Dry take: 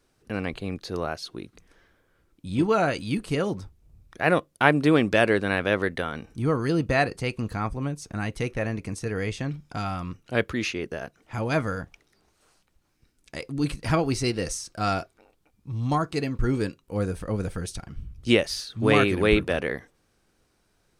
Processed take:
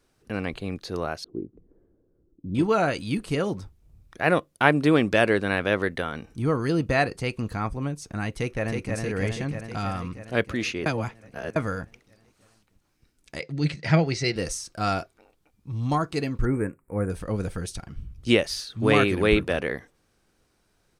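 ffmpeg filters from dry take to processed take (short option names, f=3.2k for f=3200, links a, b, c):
-filter_complex "[0:a]asettb=1/sr,asplit=3[a][b][c];[a]atrim=end=1.244[d];[b]atrim=start=1.24:end=2.55,asetpts=PTS-STARTPTS,afade=t=in:d=0.004:c=qsin,afade=t=out:st=1.306:d=0.004:c=qsin,lowpass=f=370:t=q:w=1.9[e];[c]atrim=start=2.546[f];[d][e]acrossfade=d=0.004:c1=hsin:c2=qsin[g];[g][f]acrossfade=d=0.004:c1=qsin:c2=hsin,asplit=2[h][i];[i]afade=t=in:st=8.35:d=0.01,afade=t=out:st=8.96:d=0.01,aecho=0:1:320|640|960|1280|1600|1920|2240|2560|2880|3200|3520|3840:0.668344|0.467841|0.327489|0.229242|0.160469|0.112329|0.07863|0.055041|0.0385287|0.0269701|0.0188791|0.0132153[j];[h][j]amix=inputs=2:normalize=0,asettb=1/sr,asplit=3[k][l][m];[k]atrim=end=13.404[n];[l]atrim=start=13.4:end=14.36,asetpts=PTS-STARTPTS,afade=t=in:d=0.004:c=qsin,afade=t=out:st=0.956:d=0.004:c=qsin,highpass=120,equalizer=f=160:t=q:w=4:g=10,equalizer=f=250:t=q:w=4:g=-9,equalizer=f=590:t=q:w=4:g=3,equalizer=f=1.1k:t=q:w=4:g=-8,equalizer=f=2k:t=q:w=4:g=9,equalizer=f=4.2k:t=q:w=4:g=3,lowpass=f=6.8k:w=0.5412,lowpass=f=6.8k:w=1.3066[o];[m]atrim=start=14.356[p];[n][o]acrossfade=d=0.004:c1=hsin:c2=qsin[q];[q][p]acrossfade=d=0.004:c1=qsin:c2=hsin,asettb=1/sr,asplit=3[r][s][t];[r]atrim=end=16.454[u];[s]atrim=start=16.45:end=17.1,asetpts=PTS-STARTPTS,afade=t=in:d=0.004:c=qsin,afade=t=out:st=0.646:d=0.004:c=qsin,asuperstop=centerf=4300:order=12:qfactor=0.8[v];[t]atrim=start=17.096[w];[u][v]acrossfade=d=0.004:c1=hsin:c2=qsin[x];[x][w]acrossfade=d=0.004:c1=qsin:c2=hsin,asplit=3[y][z][aa];[y]atrim=end=10.862[ab];[z]atrim=start=10.858:end=11.562,asetpts=PTS-STARTPTS,areverse[ac];[aa]atrim=start=11.558[ad];[ab][ac]acrossfade=d=0.004:c1=hsin:c2=hsin[ae];[ae][ad]acrossfade=d=0.004:c1=hsin:c2=hsin"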